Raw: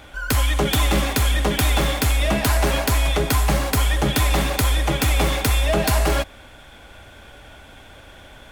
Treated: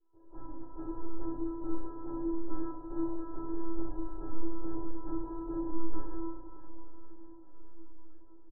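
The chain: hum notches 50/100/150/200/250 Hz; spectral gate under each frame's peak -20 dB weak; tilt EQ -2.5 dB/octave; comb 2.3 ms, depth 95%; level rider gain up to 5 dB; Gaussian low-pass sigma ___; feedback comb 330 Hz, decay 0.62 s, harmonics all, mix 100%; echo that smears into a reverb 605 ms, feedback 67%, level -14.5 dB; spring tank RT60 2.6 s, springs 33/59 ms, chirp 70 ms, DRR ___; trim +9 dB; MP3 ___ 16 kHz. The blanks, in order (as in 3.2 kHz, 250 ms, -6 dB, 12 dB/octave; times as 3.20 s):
12 samples, 2 dB, 24 kbps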